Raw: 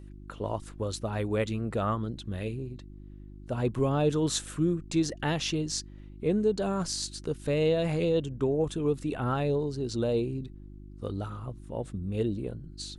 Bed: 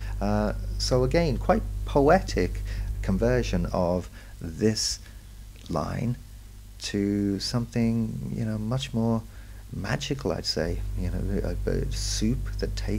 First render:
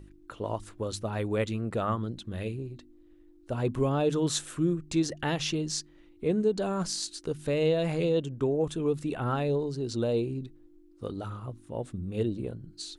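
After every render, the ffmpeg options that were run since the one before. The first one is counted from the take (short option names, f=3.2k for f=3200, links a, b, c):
-af "bandreject=f=50:t=h:w=4,bandreject=f=100:t=h:w=4,bandreject=f=150:t=h:w=4,bandreject=f=200:t=h:w=4,bandreject=f=250:t=h:w=4"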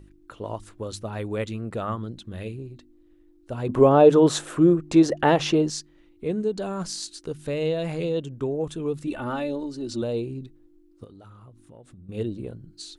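-filter_complex "[0:a]asettb=1/sr,asplit=3[a][b][c];[a]atrim=end=3.694[d];[b]atrim=start=3.69:end=5.7,asetpts=PTS-STARTPTS,afade=t=in:d=0.004:c=qsin,afade=t=out:st=2.006:d=0.004:c=qsin,equalizer=f=620:w=0.38:g=14.5[e];[c]atrim=start=5.696[f];[d][e]acrossfade=d=0.004:c1=hsin:c2=qsin[g];[g][f]acrossfade=d=0.004:c1=qsin:c2=hsin,asettb=1/sr,asplit=3[h][i][j];[h]atrim=end=9.074[k];[i]atrim=start=9.07:end=10.02,asetpts=PTS-STARTPTS,afade=t=in:d=0.004:c=qsin,afade=t=out:st=0.946:d=0.004:c=qsin,aecho=1:1:3.4:0.75,atrim=end_sample=41895[l];[j]atrim=start=10.016[m];[k][l]acrossfade=d=0.004:c1=hsin:c2=qsin[n];[n][m]acrossfade=d=0.004:c1=qsin:c2=hsin,asettb=1/sr,asplit=3[o][p][q];[o]atrim=end=11.044[r];[p]atrim=start=11.04:end=12.09,asetpts=PTS-STARTPTS,afade=t=in:d=0.004:c=qsin,afade=t=out:st=1.046:d=0.004:c=qsin,acompressor=threshold=-45dB:ratio=5:attack=3.2:release=140:knee=1:detection=peak[s];[q]atrim=start=12.086[t];[r][s]acrossfade=d=0.004:c1=hsin:c2=qsin[u];[u][t]acrossfade=d=0.004:c1=qsin:c2=hsin"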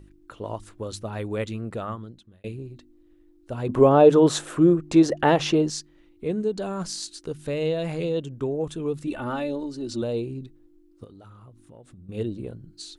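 -filter_complex "[0:a]asplit=2[a][b];[a]atrim=end=2.44,asetpts=PTS-STARTPTS,afade=t=out:st=1.64:d=0.8[c];[b]atrim=start=2.44,asetpts=PTS-STARTPTS,afade=t=in:d=0.004:c=hsin[d];[c][d]concat=n=2:v=0:a=1"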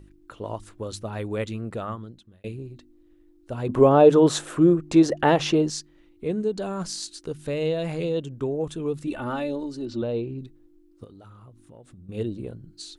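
-filter_complex "[0:a]asettb=1/sr,asplit=3[a][b][c];[a]atrim=end=9.854[d];[b]atrim=start=9.85:end=10.39,asetpts=PTS-STARTPTS,afade=t=in:d=0.004:c=qsin,afade=t=out:st=0.536:d=0.004:c=qsin,lowpass=3.4k[e];[c]atrim=start=10.386[f];[d][e]acrossfade=d=0.004:c1=hsin:c2=qsin[g];[g][f]acrossfade=d=0.004:c1=qsin:c2=hsin"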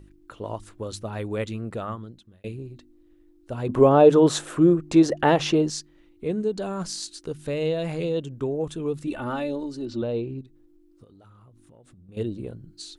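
-filter_complex "[0:a]asettb=1/sr,asplit=3[a][b][c];[a]atrim=end=10.414[d];[b]atrim=start=10.41:end=12.17,asetpts=PTS-STARTPTS,afade=t=in:d=0.004:c=qsin,afade=t=out:st=1.756:d=0.004:c=qsin,acompressor=threshold=-52dB:ratio=2:attack=3.2:release=140:knee=1:detection=peak[e];[c]atrim=start=12.166[f];[d][e]acrossfade=d=0.004:c1=hsin:c2=qsin[g];[g][f]acrossfade=d=0.004:c1=qsin:c2=hsin"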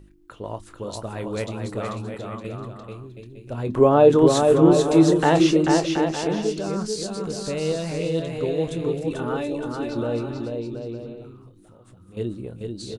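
-filter_complex "[0:a]asplit=2[a][b];[b]adelay=25,volume=-12dB[c];[a][c]amix=inputs=2:normalize=0,aecho=1:1:440|726|911.9|1033|1111:0.631|0.398|0.251|0.158|0.1"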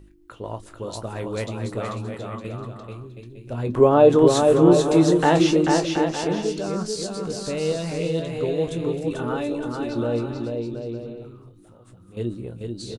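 -filter_complex "[0:a]asplit=2[a][b];[b]adelay=17,volume=-11.5dB[c];[a][c]amix=inputs=2:normalize=0,aecho=1:1:222:0.0708"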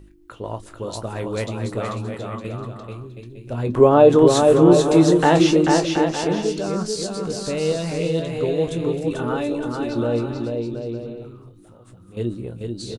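-af "volume=2.5dB,alimiter=limit=-2dB:level=0:latency=1"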